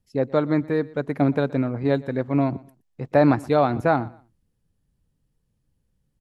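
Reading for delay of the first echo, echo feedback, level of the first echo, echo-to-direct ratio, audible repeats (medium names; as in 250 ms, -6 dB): 121 ms, 25%, -22.0 dB, -21.5 dB, 2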